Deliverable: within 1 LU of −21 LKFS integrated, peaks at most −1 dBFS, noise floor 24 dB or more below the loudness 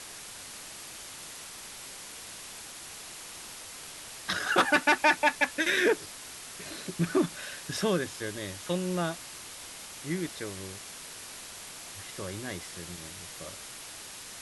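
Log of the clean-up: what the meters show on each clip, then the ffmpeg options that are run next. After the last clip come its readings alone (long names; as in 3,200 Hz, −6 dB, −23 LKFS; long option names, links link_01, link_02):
background noise floor −45 dBFS; target noise floor −56 dBFS; integrated loudness −32.0 LKFS; sample peak −12.0 dBFS; target loudness −21.0 LKFS
→ -af "afftdn=noise_reduction=11:noise_floor=-45"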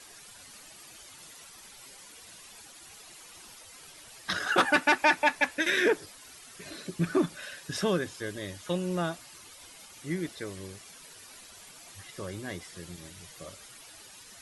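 background noise floor −51 dBFS; target noise floor −53 dBFS
→ -af "afftdn=noise_reduction=6:noise_floor=-51"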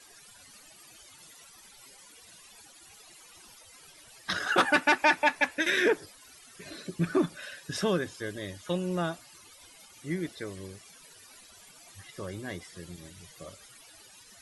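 background noise floor −54 dBFS; integrated loudness −29.0 LKFS; sample peak −12.0 dBFS; target loudness −21.0 LKFS
→ -af "volume=8dB"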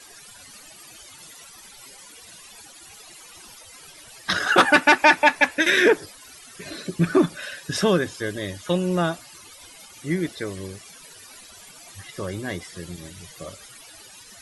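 integrated loudness −21.0 LKFS; sample peak −4.0 dBFS; background noise floor −46 dBFS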